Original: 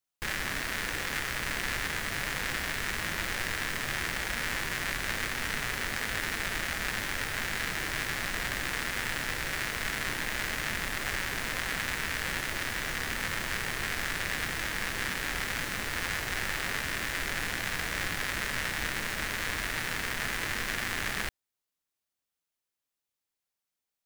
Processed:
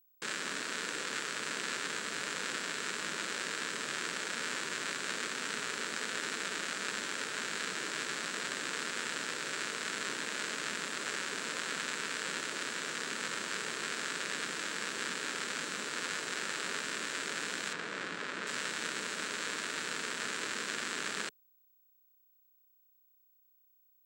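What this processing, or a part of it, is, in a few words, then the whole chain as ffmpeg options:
old television with a line whistle: -filter_complex "[0:a]highpass=f=190:w=0.5412,highpass=f=190:w=1.3066,equalizer=f=430:t=q:w=4:g=5,equalizer=f=760:t=q:w=4:g=-7,equalizer=f=1.4k:t=q:w=4:g=3,equalizer=f=2k:t=q:w=4:g=-6,equalizer=f=4.1k:t=q:w=4:g=3,equalizer=f=7.6k:t=q:w=4:g=8,lowpass=f=8.9k:w=0.5412,lowpass=f=8.9k:w=1.3066,aeval=exprs='val(0)+0.000794*sin(2*PI*15734*n/s)':c=same,asettb=1/sr,asplit=3[a][b][c];[a]atrim=end=17.734[d];[b]atrim=start=17.73:end=18.47,asetpts=PTS-STARTPTS,afade=t=in:d=0.004:c=qsin,afade=t=out:st=0.736:d=0.004:c=qsin,aemphasis=mode=reproduction:type=75fm[e];[c]atrim=start=18.466[f];[d][e]acrossfade=d=0.004:c1=hsin:c2=qsin[g];[g][f]acrossfade=d=0.004:c1=qsin:c2=hsin,volume=-3.5dB"

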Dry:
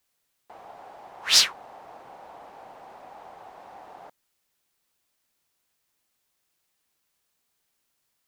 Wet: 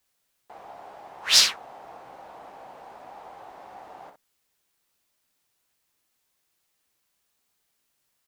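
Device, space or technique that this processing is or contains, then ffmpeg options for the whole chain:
slapback doubling: -filter_complex "[0:a]asplit=3[a][b][c];[b]adelay=15,volume=-9dB[d];[c]adelay=61,volume=-8dB[e];[a][d][e]amix=inputs=3:normalize=0"

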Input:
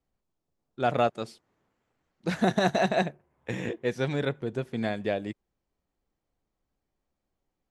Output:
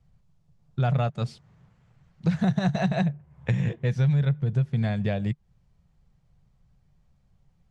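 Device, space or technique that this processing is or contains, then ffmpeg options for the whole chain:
jukebox: -af "lowpass=7.6k,lowshelf=f=210:t=q:w=3:g=11.5,acompressor=threshold=-34dB:ratio=3,volume=8.5dB"

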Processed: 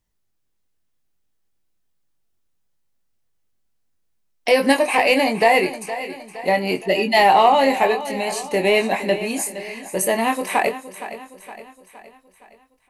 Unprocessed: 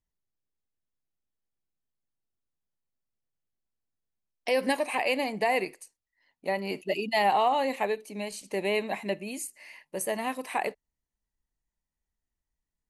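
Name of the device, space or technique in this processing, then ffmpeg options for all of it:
parallel distortion: -filter_complex "[0:a]asplit=2[a][b];[b]adelay=22,volume=-6dB[c];[a][c]amix=inputs=2:normalize=0,asplit=2[d][e];[e]asoftclip=type=hard:threshold=-24.5dB,volume=-12dB[f];[d][f]amix=inputs=2:normalize=0,aecho=1:1:466|932|1398|1864|2330:0.211|0.108|0.055|0.028|0.0143,volume=8.5dB"

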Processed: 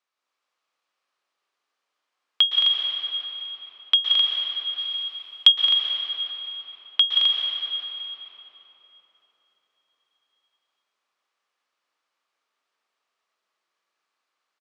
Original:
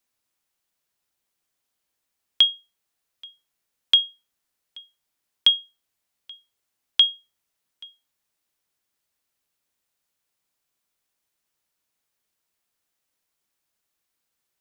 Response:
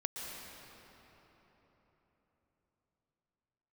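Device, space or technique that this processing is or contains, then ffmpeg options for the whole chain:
station announcement: -filter_complex "[0:a]highpass=440,lowpass=4.3k,equalizer=f=1.2k:t=o:w=0.33:g=8,aecho=1:1:177.8|218.7|259.5:0.447|0.501|0.562[a];[1:a]atrim=start_sample=2205[b];[a][b]afir=irnorm=-1:irlink=0,asettb=1/sr,asplit=3[c][d][e];[c]atrim=end=4.784[f];[d]atrim=start=4.78:end=5.52,asetpts=PTS-STARTPTS,afade=t=in:d=0.004:c=qsin,afade=t=out:st=0.736:d=0.004:c=qsin,aemphasis=mode=production:type=75kf[g];[e]atrim=start=5.516[h];[f][g]acrossfade=d=0.004:c1=hsin:c2=qsin[i];[i][h]acrossfade=d=0.004:c1=qsin:c2=hsin,volume=1dB"

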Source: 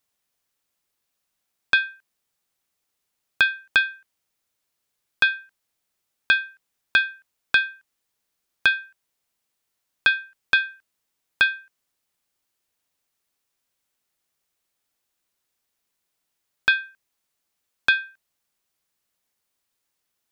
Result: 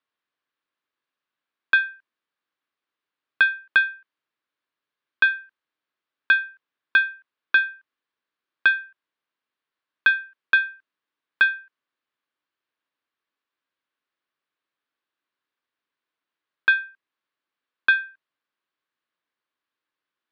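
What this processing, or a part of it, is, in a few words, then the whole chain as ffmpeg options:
kitchen radio: -af "highpass=170,equalizer=f=190:t=q:w=4:g=-5,equalizer=f=300:t=q:w=4:g=4,equalizer=f=760:t=q:w=4:g=-4,equalizer=f=1.1k:t=q:w=4:g=6,equalizer=f=1.6k:t=q:w=4:g=6,lowpass=f=3.9k:w=0.5412,lowpass=f=3.9k:w=1.3066,volume=-4.5dB"

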